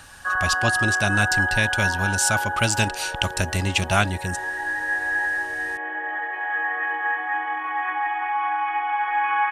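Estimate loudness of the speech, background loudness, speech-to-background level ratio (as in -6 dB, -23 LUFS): -24.0 LUFS, -24.5 LUFS, 0.5 dB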